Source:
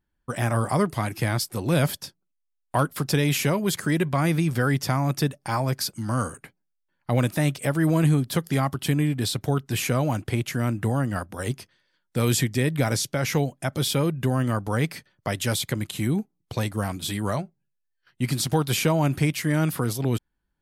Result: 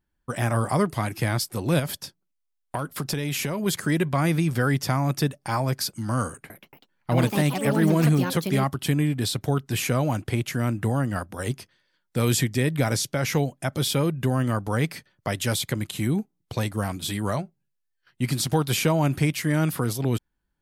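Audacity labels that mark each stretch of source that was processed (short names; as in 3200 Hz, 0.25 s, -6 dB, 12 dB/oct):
1.790000	3.660000	compressor, threshold -23 dBFS
6.270000	9.130000	echoes that change speed 0.229 s, each echo +5 st, echoes 2, each echo -6 dB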